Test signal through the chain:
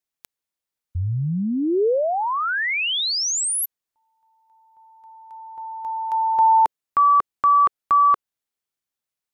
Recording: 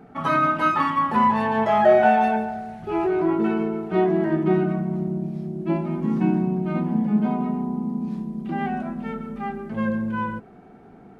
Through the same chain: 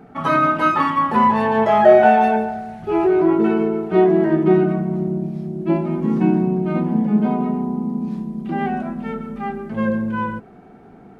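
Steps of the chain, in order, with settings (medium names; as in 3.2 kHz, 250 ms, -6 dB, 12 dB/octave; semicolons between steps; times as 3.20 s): dynamic bell 440 Hz, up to +5 dB, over -34 dBFS, Q 1.7; trim +3 dB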